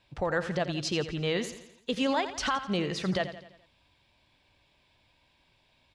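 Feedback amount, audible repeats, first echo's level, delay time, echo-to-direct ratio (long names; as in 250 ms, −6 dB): 50%, 4, −12.0 dB, 85 ms, −11.0 dB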